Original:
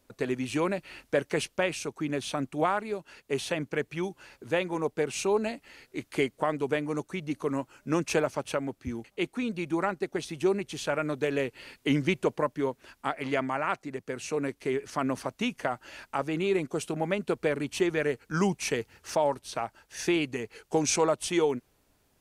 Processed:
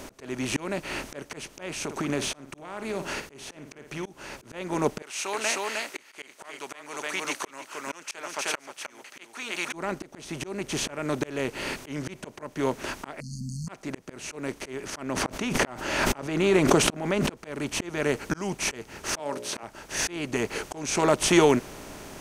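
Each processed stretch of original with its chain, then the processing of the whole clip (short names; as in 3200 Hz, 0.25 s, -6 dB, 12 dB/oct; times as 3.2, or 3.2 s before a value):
1.84–4.06 compressor, threshold -40 dBFS + flutter echo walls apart 9.4 m, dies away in 0.21 s
5.02–9.73 HPF 1400 Hz + echo 0.31 s -7.5 dB
13.2–13.69 brick-wall FIR band-stop 230–4200 Hz + air absorption 54 m
15.02–17.37 high shelf 5800 Hz -8 dB + backwards sustainer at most 30 dB/s
19.19–19.63 HPF 220 Hz + notches 60/120/180/240/300/360/420/480/540/600 Hz
whole clip: per-bin compression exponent 0.6; notch 490 Hz, Q 12; auto swell 0.541 s; gain +5.5 dB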